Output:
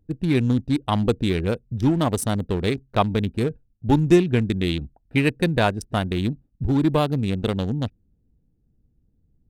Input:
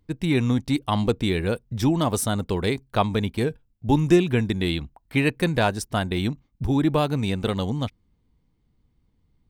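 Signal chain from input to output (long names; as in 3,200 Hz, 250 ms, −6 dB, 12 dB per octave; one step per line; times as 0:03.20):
adaptive Wiener filter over 41 samples
level +2 dB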